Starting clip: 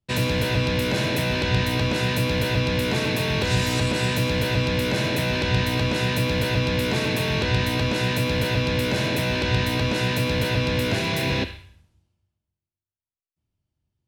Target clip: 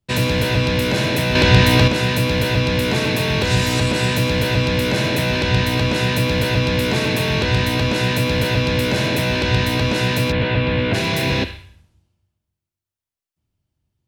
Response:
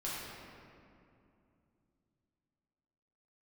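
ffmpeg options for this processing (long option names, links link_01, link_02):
-filter_complex "[0:a]asettb=1/sr,asplit=3[link_01][link_02][link_03];[link_01]atrim=end=1.354[link_04];[link_02]atrim=start=1.35:end=1.88,asetpts=PTS-STARTPTS,afade=type=in:duration=0.004:curve=qsin,afade=type=out:start_time=0.526:duration=0.004:curve=qsin,acontrast=45[link_05];[link_03]atrim=start=1.876[link_06];[link_04][link_05]acrossfade=duration=0.004:curve1=hsin:curve2=qsin[link_07];[link_07][link_06]acrossfade=duration=0.004:curve1=qsin:curve2=hsin,asettb=1/sr,asplit=3[link_08][link_09][link_10];[link_08]atrim=end=7.434[link_11];[link_09]atrim=start=7.43:end=7.96,asetpts=PTS-STARTPTS,afade=type=in:duration=0.004:curve=qsin,afade=type=out:start_time=0.526:duration=0.004:curve=qsin,volume=14.5dB,asoftclip=hard,volume=-14.5dB[link_12];[link_10]atrim=start=7.956[link_13];[link_11][link_12]acrossfade=duration=0.004:curve1=hsin:curve2=qsin[link_14];[link_14][link_13]acrossfade=duration=0.004:curve1=qsin:curve2=hsin,asplit=3[link_15][link_16][link_17];[link_15]afade=type=out:start_time=10.31:duration=0.02[link_18];[link_16]lowpass=frequency=3400:width=0.5412,lowpass=frequency=3400:width=1.3066,afade=type=in:start_time=10.31:duration=0.02,afade=type=out:start_time=10.93:duration=0.02[link_19];[link_17]afade=type=in:start_time=10.93:duration=0.02[link_20];[link_18][link_19][link_20]amix=inputs=3:normalize=0,volume=4.5dB"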